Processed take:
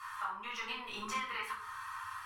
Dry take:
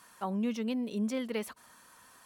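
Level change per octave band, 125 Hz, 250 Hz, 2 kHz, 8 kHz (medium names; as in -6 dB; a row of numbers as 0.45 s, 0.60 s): no reading, -21.5 dB, +7.0 dB, -1.0 dB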